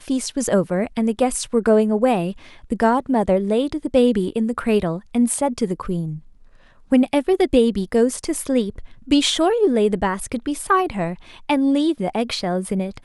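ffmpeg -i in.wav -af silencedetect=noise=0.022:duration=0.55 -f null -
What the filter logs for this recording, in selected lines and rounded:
silence_start: 6.18
silence_end: 6.92 | silence_duration: 0.74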